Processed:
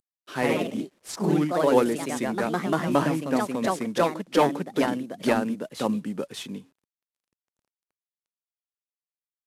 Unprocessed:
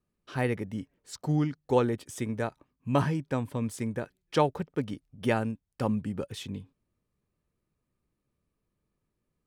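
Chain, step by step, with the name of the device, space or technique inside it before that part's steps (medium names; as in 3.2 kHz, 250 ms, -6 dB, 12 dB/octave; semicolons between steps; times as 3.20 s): 3.14–3.99 s: treble shelf 3.5 kHz -2.5 dB; ever faster or slower copies 98 ms, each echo +2 st, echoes 3; early wireless headset (high-pass 180 Hz 24 dB/octave; CVSD coder 64 kbps); trim +4 dB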